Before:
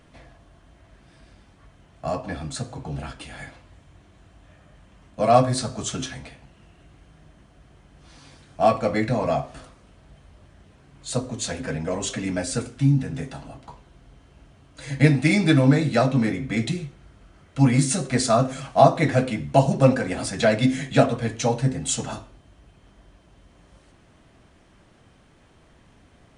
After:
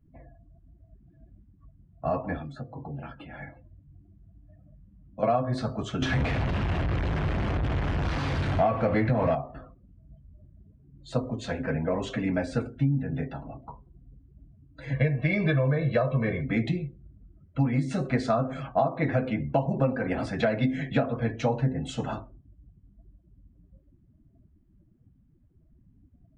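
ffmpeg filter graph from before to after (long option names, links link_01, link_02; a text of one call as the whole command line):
ffmpeg -i in.wav -filter_complex "[0:a]asettb=1/sr,asplit=3[link_01][link_02][link_03];[link_01]atrim=end=2.384[link_04];[link_02]atrim=start=2.38:end=5.23,asetpts=PTS-STARTPTS,afade=type=in:duration=0.004:curve=qsin,afade=type=out:start_time=2.846:duration=0.004:curve=qsin,equalizer=frequency=420:width=6.1:gain=-3,acrossover=split=100|1900|6900[link_05][link_06][link_07][link_08];[link_05]acompressor=threshold=-54dB:ratio=3[link_09];[link_06]acompressor=threshold=-38dB:ratio=3[link_10];[link_07]acompressor=threshold=-48dB:ratio=3[link_11];[link_08]acompressor=threshold=-55dB:ratio=3[link_12];[link_09][link_10][link_11][link_12]amix=inputs=4:normalize=0,asplit=2[link_13][link_14];[link_14]adelay=21,volume=-9dB[link_15];[link_13][link_15]amix=inputs=2:normalize=0,atrim=end_sample=125685[link_16];[link_03]atrim=start=5.226[link_17];[link_04][link_16]acrossfade=duration=0.004:curve1=hsin:curve2=qsin[link_18];[link_18][link_17]acrossfade=duration=0.004:curve1=qsin:curve2=hsin,asettb=1/sr,asplit=3[link_19][link_20][link_21];[link_19]atrim=end=6.024[link_22];[link_20]atrim=start=6.02:end=9.35,asetpts=PTS-STARTPTS,afade=type=in:duration=0.004:curve=qsin,afade=type=out:start_time=3.326:duration=0.004:curve=qsin,aeval=exprs='val(0)+0.5*0.0376*sgn(val(0))':channel_layout=same,equalizer=frequency=91:width_type=o:width=0.95:gain=7,acontrast=23[link_23];[link_21]atrim=start=9.346[link_24];[link_22][link_23]acrossfade=duration=0.004:curve1=hsin:curve2=qsin[link_25];[link_25][link_24]acrossfade=duration=0.004:curve1=qsin:curve2=hsin,asettb=1/sr,asplit=3[link_26][link_27][link_28];[link_26]atrim=end=14.934[link_29];[link_27]atrim=start=14.93:end=16.43,asetpts=PTS-STARTPTS,afade=type=in:duration=0.004:curve=qsin,afade=type=out:start_time=1.496:duration=0.004:curve=qsin,equalizer=frequency=8300:width_type=o:width=0.94:gain=-11,aeval=exprs='val(0)*gte(abs(val(0)),0.00794)':channel_layout=same,aecho=1:1:1.8:0.79,atrim=end_sample=66150[link_30];[link_28]atrim=start=16.426[link_31];[link_29][link_30]acrossfade=duration=0.004:curve1=hsin:curve2=qsin[link_32];[link_32][link_31]acrossfade=duration=0.004:curve1=qsin:curve2=hsin,acompressor=threshold=-20dB:ratio=20,afftdn=noise_reduction=31:noise_floor=-45,lowpass=2400" out.wav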